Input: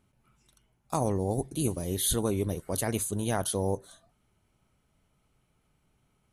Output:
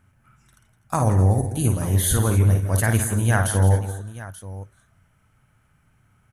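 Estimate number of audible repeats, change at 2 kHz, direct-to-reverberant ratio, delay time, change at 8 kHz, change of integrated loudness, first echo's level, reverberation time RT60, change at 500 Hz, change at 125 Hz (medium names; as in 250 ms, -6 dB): 4, +15.0 dB, no reverb, 53 ms, +6.0 dB, +9.5 dB, -6.5 dB, no reverb, +3.5 dB, +15.5 dB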